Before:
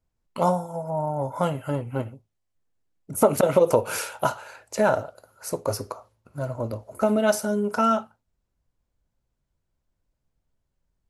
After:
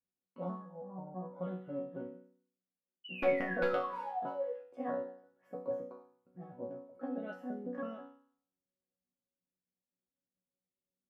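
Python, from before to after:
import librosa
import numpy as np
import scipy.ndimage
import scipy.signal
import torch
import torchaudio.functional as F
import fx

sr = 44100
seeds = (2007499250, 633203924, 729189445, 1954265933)

y = fx.pitch_trill(x, sr, semitones=3.5, every_ms=163)
y = scipy.signal.sosfilt(scipy.signal.butter(2, 130.0, 'highpass', fs=sr, output='sos'), y)
y = fx.low_shelf_res(y, sr, hz=670.0, db=7.0, q=1.5)
y = (np.mod(10.0 ** (2.5 / 20.0) * y + 1.0, 2.0) - 1.0) / 10.0 ** (2.5 / 20.0)
y = fx.spec_paint(y, sr, seeds[0], shape='fall', start_s=3.04, length_s=1.5, low_hz=460.0, high_hz=3000.0, level_db=-20.0)
y = fx.air_absorb(y, sr, metres=410.0)
y = fx.resonator_bank(y, sr, root=54, chord='sus4', decay_s=0.57)
y = y * librosa.db_to_amplitude(1.0)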